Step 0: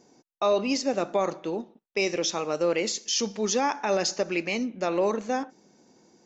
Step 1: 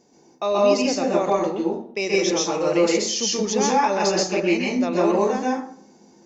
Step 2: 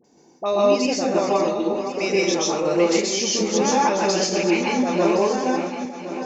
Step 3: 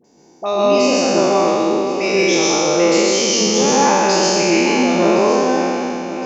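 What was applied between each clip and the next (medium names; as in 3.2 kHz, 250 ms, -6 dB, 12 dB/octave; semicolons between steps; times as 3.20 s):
peaking EQ 1.4 kHz -3.5 dB 0.44 oct; plate-style reverb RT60 0.54 s, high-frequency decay 0.55×, pre-delay 115 ms, DRR -4.5 dB
backward echo that repeats 532 ms, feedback 59%, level -9 dB; phase dispersion highs, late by 44 ms, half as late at 1.1 kHz
spectral sustain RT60 2.66 s; trim +1.5 dB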